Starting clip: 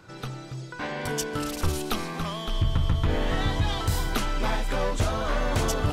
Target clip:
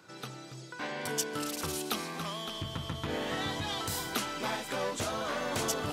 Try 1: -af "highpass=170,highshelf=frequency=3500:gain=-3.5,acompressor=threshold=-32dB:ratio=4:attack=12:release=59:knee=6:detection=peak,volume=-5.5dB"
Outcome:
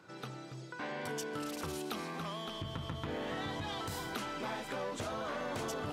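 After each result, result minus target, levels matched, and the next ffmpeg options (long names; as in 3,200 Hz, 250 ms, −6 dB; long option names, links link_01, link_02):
downward compressor: peak gain reduction +7 dB; 8,000 Hz band −6.0 dB
-af "highpass=170,highshelf=frequency=3500:gain=-3.5,volume=-5.5dB"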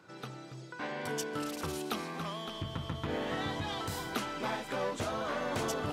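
8,000 Hz band −5.5 dB
-af "highpass=170,highshelf=frequency=3500:gain=6,volume=-5.5dB"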